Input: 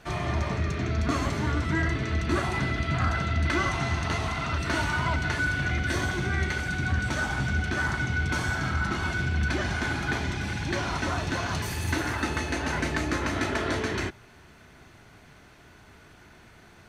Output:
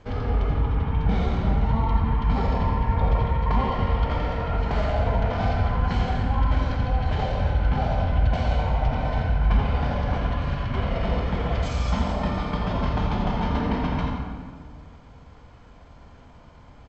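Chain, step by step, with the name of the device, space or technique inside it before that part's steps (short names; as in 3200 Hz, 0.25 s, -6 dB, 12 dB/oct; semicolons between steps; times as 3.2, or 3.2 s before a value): monster voice (pitch shift -6.5 st; formant shift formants -5 st; low shelf 180 Hz +6 dB; echo 83 ms -7.5 dB; reverb RT60 1.8 s, pre-delay 42 ms, DRR 3 dB); gain -1 dB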